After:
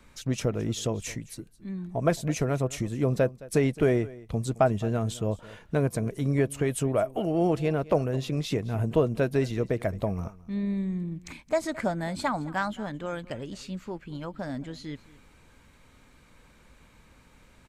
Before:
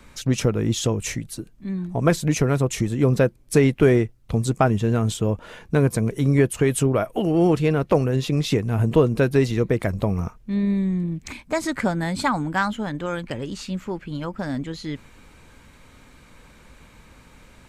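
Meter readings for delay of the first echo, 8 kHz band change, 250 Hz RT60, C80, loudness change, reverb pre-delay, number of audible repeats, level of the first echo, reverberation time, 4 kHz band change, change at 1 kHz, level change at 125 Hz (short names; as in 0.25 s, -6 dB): 0.216 s, -7.5 dB, none, none, -6.5 dB, none, 1, -20.0 dB, none, -7.5 dB, -5.5 dB, -7.5 dB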